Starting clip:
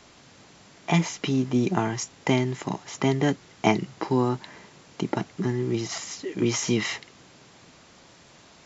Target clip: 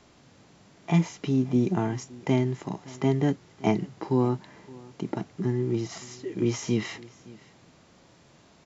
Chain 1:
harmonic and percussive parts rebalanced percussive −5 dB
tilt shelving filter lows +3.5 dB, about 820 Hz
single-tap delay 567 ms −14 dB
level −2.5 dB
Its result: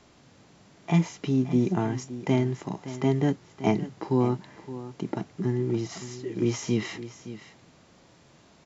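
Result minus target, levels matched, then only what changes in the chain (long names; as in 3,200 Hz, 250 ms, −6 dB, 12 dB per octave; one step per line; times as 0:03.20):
echo-to-direct +8 dB
change: single-tap delay 567 ms −22 dB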